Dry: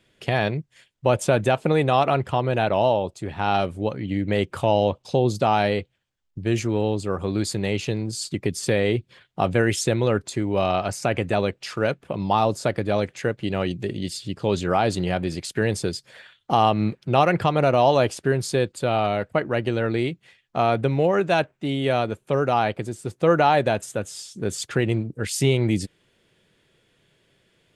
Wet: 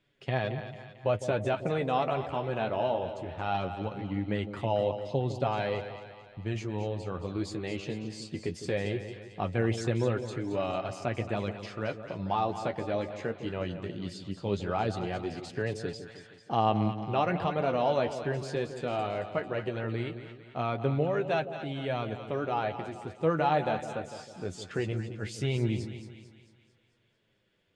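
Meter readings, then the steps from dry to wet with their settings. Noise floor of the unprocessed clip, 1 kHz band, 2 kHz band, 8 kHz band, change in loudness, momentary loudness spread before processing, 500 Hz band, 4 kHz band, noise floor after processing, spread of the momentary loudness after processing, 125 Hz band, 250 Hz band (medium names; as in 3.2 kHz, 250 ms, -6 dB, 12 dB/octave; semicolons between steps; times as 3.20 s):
-69 dBFS, -9.0 dB, -9.5 dB, -16.5 dB, -9.0 dB, 9 LU, -9.0 dB, -11.0 dB, -61 dBFS, 10 LU, -8.0 dB, -9.0 dB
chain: flange 0.19 Hz, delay 6.8 ms, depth 6.7 ms, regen +34%; distance through air 87 m; on a send: two-band feedback delay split 760 Hz, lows 157 ms, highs 223 ms, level -10 dB; on the sum: trim -5.5 dB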